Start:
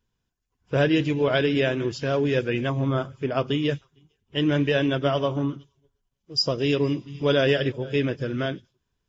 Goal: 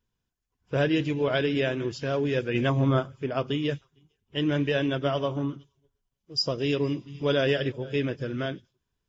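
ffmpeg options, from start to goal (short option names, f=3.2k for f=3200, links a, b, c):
-filter_complex "[0:a]asplit=3[a][b][c];[a]afade=t=out:st=2.54:d=0.02[d];[b]acontrast=25,afade=t=in:st=2.54:d=0.02,afade=t=out:st=2.99:d=0.02[e];[c]afade=t=in:st=2.99:d=0.02[f];[d][e][f]amix=inputs=3:normalize=0,volume=-3.5dB"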